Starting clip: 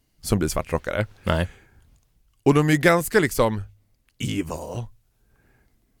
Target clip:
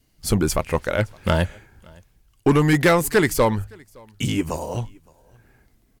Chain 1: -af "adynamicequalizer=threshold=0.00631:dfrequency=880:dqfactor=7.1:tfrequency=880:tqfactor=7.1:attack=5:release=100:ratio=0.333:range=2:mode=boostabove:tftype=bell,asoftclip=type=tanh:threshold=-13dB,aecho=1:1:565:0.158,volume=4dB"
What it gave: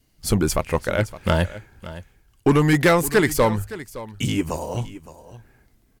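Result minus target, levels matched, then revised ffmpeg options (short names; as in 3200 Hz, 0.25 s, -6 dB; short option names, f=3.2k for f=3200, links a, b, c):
echo-to-direct +11.5 dB
-af "adynamicequalizer=threshold=0.00631:dfrequency=880:dqfactor=7.1:tfrequency=880:tqfactor=7.1:attack=5:release=100:ratio=0.333:range=2:mode=boostabove:tftype=bell,asoftclip=type=tanh:threshold=-13dB,aecho=1:1:565:0.0422,volume=4dB"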